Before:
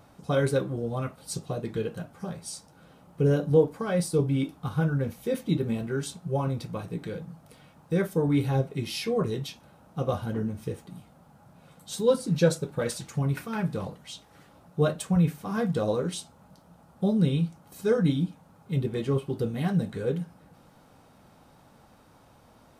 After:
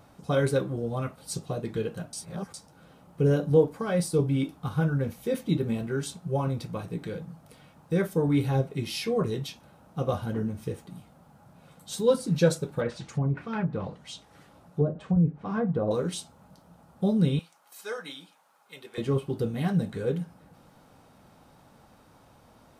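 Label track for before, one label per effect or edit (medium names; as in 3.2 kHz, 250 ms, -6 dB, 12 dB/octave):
2.130000	2.540000	reverse
12.800000	15.910000	low-pass that closes with the level closes to 460 Hz, closed at -20.5 dBFS
17.390000	18.980000	high-pass 920 Hz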